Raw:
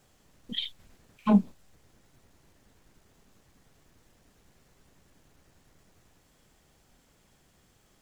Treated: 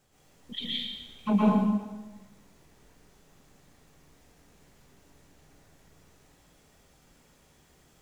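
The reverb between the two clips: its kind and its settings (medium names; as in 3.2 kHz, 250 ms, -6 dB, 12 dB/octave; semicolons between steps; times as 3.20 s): plate-style reverb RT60 1.2 s, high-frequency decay 0.9×, pre-delay 105 ms, DRR -7.5 dB; trim -4.5 dB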